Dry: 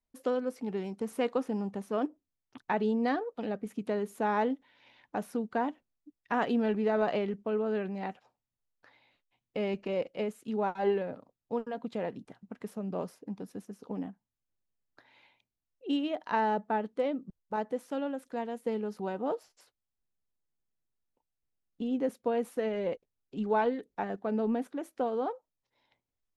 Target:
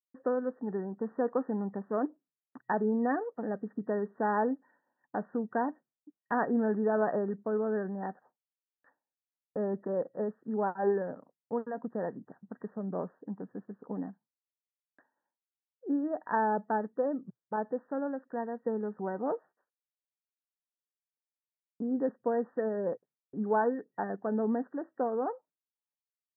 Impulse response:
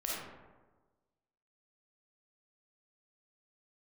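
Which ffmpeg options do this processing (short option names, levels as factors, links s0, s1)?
-af "afftfilt=real='re*between(b*sr/4096,120,1900)':imag='im*between(b*sr/4096,120,1900)':win_size=4096:overlap=0.75,agate=range=0.0224:threshold=0.00158:ratio=3:detection=peak"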